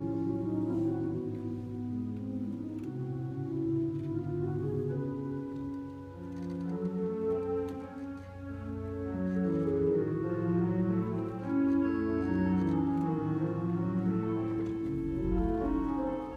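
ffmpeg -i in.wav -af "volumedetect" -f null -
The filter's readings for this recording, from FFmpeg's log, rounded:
mean_volume: -32.3 dB
max_volume: -19.1 dB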